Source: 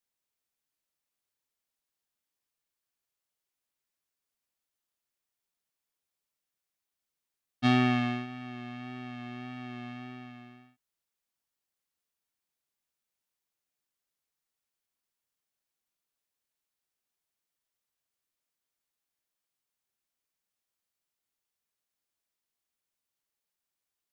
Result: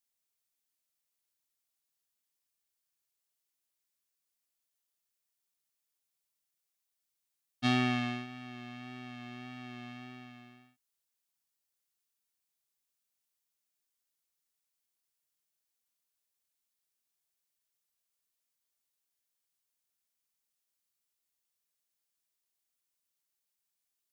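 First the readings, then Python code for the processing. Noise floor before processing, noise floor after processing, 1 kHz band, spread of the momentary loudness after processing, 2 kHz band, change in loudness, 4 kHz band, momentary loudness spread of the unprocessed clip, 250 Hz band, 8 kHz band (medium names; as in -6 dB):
under -85 dBFS, -85 dBFS, -4.5 dB, 20 LU, -2.5 dB, -4.0 dB, -0.5 dB, 20 LU, -5.0 dB, no reading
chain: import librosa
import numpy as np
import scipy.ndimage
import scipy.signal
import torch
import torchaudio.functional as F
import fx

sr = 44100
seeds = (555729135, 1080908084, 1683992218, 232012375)

y = fx.high_shelf(x, sr, hz=3300.0, db=9.0)
y = F.gain(torch.from_numpy(y), -5.0).numpy()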